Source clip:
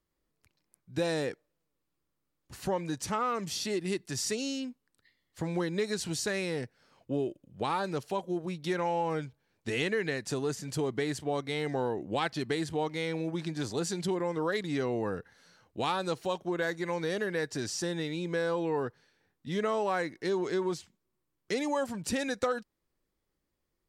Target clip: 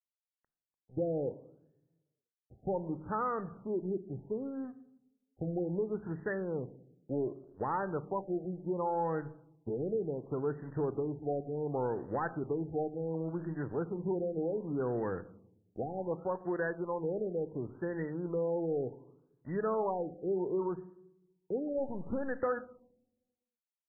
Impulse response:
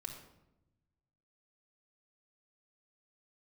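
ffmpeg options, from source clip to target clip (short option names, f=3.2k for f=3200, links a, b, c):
-filter_complex "[0:a]asoftclip=type=tanh:threshold=-22dB,asettb=1/sr,asplit=3[a][b][c];[a]atrim=end=21.784[d];[b]atrim=start=21.78:end=22.33,asetpts=PTS-STARTPTS,afade=t=in:d=0.004:c=qsin,afade=t=out:st=0.546:d=0.004:c=qsin,aeval=exprs='0.0668*(cos(1*acos(clip(val(0)/0.0668,-1,1)))-cos(1*PI/2))+0.00422*(cos(8*acos(clip(val(0)/0.0668,-1,1)))-cos(8*PI/2))':c=same[e];[c]atrim=start=22.326[f];[d][e]acrossfade=d=0.004:c1=hsin:c2=qsin[g];[g][f]acrossfade=d=0.004:c1=qsin:c2=hsin,aeval=exprs='sgn(val(0))*max(abs(val(0))-0.00299,0)':c=same,asplit=2[h][i];[1:a]atrim=start_sample=2205,asetrate=52920,aresample=44100[j];[i][j]afir=irnorm=-1:irlink=0,volume=-4dB[k];[h][k]amix=inputs=2:normalize=0,afftfilt=real='re*lt(b*sr/1024,790*pow(2000/790,0.5+0.5*sin(2*PI*0.68*pts/sr)))':imag='im*lt(b*sr/1024,790*pow(2000/790,0.5+0.5*sin(2*PI*0.68*pts/sr)))':win_size=1024:overlap=0.75,volume=-3dB"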